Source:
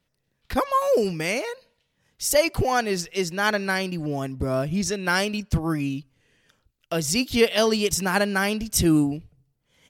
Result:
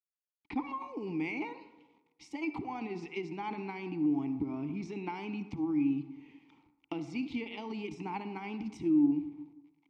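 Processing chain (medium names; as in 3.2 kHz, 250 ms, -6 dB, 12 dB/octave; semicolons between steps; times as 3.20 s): dynamic bell 140 Hz, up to +5 dB, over -45 dBFS, Q 6.1; level rider gain up to 15.5 dB; transient shaper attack +7 dB, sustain +11 dB; compression, threshold -17 dBFS, peak gain reduction 14.5 dB; bit crusher 8-bit; vowel filter u; distance through air 84 m; reverberation RT60 1.1 s, pre-delay 47 ms, DRR 11.5 dB; trim -2.5 dB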